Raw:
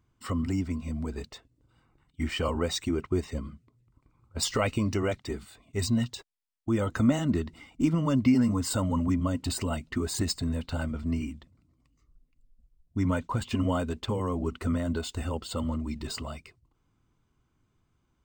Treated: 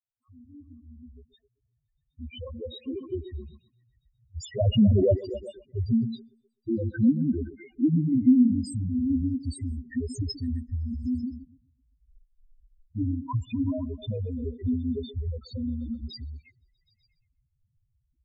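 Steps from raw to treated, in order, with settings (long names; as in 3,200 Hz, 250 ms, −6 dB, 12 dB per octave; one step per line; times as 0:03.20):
fade in at the beginning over 5.51 s
0:04.59–0:05.25: leveller curve on the samples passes 5
spectral peaks only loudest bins 2
echo through a band-pass that steps 128 ms, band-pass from 290 Hz, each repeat 0.7 octaves, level −10 dB
level +4.5 dB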